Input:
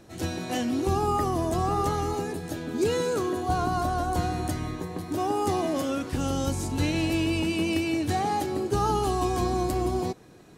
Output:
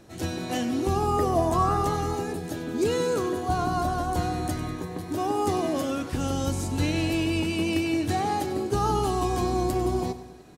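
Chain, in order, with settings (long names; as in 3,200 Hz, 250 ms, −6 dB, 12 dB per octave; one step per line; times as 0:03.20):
0:01.16–0:01.76: parametric band 420 Hz → 1,600 Hz +13 dB 0.33 octaves
repeating echo 97 ms, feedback 58%, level −14.5 dB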